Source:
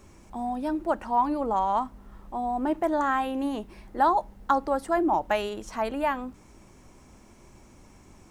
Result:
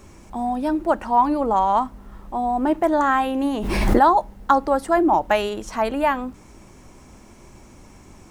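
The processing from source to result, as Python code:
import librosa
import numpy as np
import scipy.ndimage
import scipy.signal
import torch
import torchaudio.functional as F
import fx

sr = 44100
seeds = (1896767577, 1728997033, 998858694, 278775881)

y = fx.pre_swell(x, sr, db_per_s=34.0, at=(3.5, 3.98), fade=0.02)
y = y * librosa.db_to_amplitude(6.5)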